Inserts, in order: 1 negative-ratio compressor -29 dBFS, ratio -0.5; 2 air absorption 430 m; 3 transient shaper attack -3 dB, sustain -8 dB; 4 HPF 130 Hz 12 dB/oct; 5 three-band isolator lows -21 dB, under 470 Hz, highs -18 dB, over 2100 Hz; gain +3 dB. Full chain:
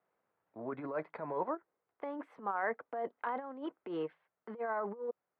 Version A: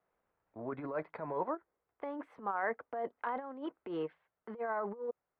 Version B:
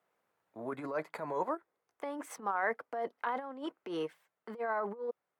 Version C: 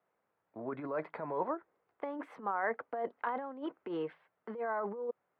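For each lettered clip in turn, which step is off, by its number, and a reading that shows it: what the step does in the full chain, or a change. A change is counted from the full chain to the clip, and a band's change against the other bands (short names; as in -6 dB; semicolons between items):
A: 4, 125 Hz band +2.0 dB; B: 2, 2 kHz band +2.5 dB; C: 3, loudness change +1.0 LU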